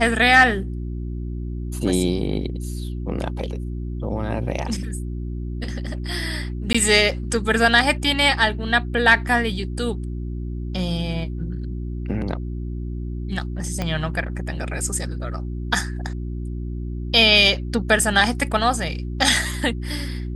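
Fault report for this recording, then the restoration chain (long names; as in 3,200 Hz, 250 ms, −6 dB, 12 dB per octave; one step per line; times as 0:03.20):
mains hum 60 Hz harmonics 6 −28 dBFS
0:06.73–0:06.75: drop-out 15 ms
0:13.82: click −11 dBFS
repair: click removal
hum removal 60 Hz, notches 6
repair the gap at 0:06.73, 15 ms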